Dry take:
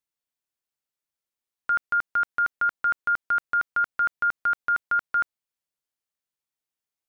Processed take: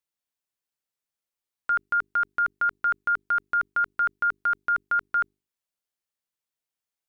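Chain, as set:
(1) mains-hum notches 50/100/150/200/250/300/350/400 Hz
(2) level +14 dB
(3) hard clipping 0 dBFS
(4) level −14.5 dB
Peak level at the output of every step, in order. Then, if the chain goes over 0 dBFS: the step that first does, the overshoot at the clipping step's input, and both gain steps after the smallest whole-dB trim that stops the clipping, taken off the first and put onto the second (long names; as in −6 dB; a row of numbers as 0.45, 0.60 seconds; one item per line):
−18.0, −4.0, −4.0, −18.5 dBFS
no step passes full scale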